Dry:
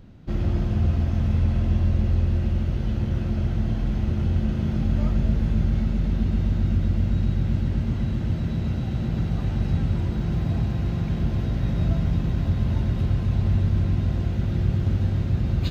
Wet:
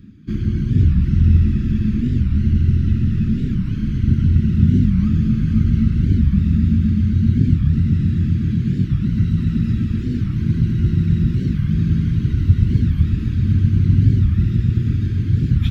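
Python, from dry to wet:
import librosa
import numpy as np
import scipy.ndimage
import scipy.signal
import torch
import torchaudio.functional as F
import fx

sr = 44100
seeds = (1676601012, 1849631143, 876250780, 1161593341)

y = fx.spec_ripple(x, sr, per_octave=2.0, drift_hz=-0.61, depth_db=8)
y = fx.highpass(y, sr, hz=120.0, slope=6)
y = fx.dereverb_blind(y, sr, rt60_s=1.5)
y = scipy.signal.sosfilt(scipy.signal.cheby1(2, 1.0, [280.0, 1600.0], 'bandstop', fs=sr, output='sos'), y)
y = fx.low_shelf(y, sr, hz=480.0, db=11.0)
y = y + 10.0 ** (-4.5 / 20.0) * np.pad(y, (int(507 * sr / 1000.0), 0))[:len(y)]
y = fx.rev_freeverb(y, sr, rt60_s=5.0, hf_ratio=0.95, predelay_ms=50, drr_db=3.0)
y = fx.record_warp(y, sr, rpm=45.0, depth_cents=250.0)
y = y * librosa.db_to_amplitude(1.0)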